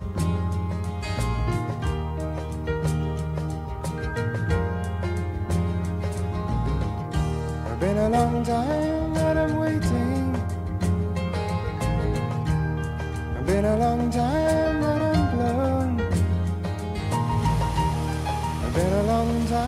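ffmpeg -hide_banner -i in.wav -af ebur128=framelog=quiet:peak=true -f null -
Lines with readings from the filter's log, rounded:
Integrated loudness:
  I:         -25.3 LUFS
  Threshold: -35.3 LUFS
Loudness range:
  LRA:         4.5 LU
  Threshold: -45.3 LUFS
  LRA low:   -27.8 LUFS
  LRA high:  -23.3 LUFS
True peak:
  Peak:       -8.6 dBFS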